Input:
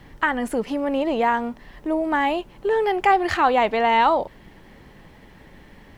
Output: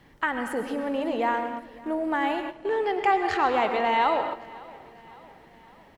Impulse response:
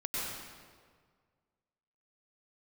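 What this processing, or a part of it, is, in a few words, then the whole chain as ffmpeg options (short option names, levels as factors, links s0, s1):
keyed gated reverb: -filter_complex "[0:a]asettb=1/sr,asplit=3[s0][s1][s2];[s0]atrim=end=2.534[s3];[s1]atrim=start=2.53:end=3.54,asetpts=PTS-STARTPTS,afade=t=in:d=0.004:c=qsin,afade=t=out:st=1.006:d=0.004:c=qsin,lowpass=8200[s4];[s2]atrim=start=3.536[s5];[s3][s4]acrossfade=d=0.004:c1=hsin:c2=qsin[s6];[s6][s5]acrossfade=d=0.004:c1=qsin:c2=hsin,asplit=3[s7][s8][s9];[1:a]atrim=start_sample=2205[s10];[s8][s10]afir=irnorm=-1:irlink=0[s11];[s9]apad=whole_len=263429[s12];[s11][s12]sidechaingate=range=0.251:threshold=0.0158:ratio=16:detection=peak,volume=0.398[s13];[s7][s13]amix=inputs=2:normalize=0,lowshelf=f=93:g=-9.5,aecho=1:1:557|1114|1671|2228:0.0794|0.0429|0.0232|0.0125,volume=0.422"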